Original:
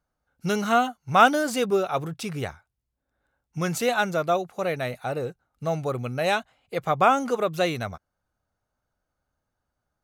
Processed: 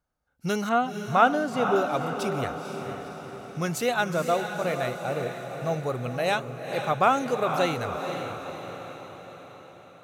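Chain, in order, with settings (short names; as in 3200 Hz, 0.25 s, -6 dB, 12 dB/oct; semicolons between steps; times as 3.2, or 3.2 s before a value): 0.69–1.76 LPF 1800 Hz 6 dB/oct; diffused feedback echo 0.492 s, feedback 56%, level -7 dB; gain -2 dB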